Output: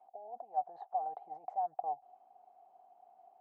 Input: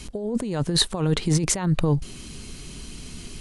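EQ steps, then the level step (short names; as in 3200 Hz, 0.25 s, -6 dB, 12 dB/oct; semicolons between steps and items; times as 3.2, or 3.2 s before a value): Butterworth band-pass 750 Hz, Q 7.9; +7.5 dB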